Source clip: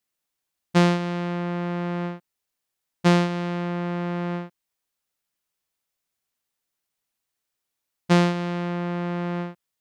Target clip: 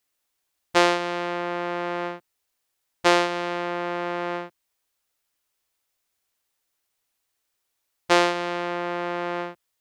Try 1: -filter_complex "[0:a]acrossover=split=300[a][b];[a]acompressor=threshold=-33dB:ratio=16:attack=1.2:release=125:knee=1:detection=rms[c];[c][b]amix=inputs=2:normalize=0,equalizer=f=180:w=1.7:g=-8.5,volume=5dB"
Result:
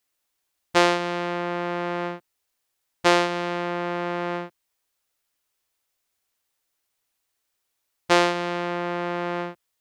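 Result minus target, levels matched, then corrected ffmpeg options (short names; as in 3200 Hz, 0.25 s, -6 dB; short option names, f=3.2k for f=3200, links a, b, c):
compressor: peak gain reduction -7 dB
-filter_complex "[0:a]acrossover=split=300[a][b];[a]acompressor=threshold=-40.5dB:ratio=16:attack=1.2:release=125:knee=1:detection=rms[c];[c][b]amix=inputs=2:normalize=0,equalizer=f=180:w=1.7:g=-8.5,volume=5dB"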